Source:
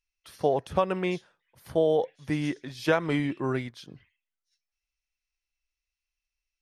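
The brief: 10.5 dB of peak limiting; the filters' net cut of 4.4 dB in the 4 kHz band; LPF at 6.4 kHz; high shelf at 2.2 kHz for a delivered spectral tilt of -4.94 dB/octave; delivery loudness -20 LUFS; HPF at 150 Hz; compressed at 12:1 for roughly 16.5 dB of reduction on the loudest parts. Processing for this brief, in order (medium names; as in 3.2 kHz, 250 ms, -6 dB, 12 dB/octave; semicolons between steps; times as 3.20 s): high-pass 150 Hz; low-pass 6.4 kHz; treble shelf 2.2 kHz +3 dB; peaking EQ 4 kHz -8.5 dB; compression 12:1, threshold -35 dBFS; trim +23 dB; peak limiter -8 dBFS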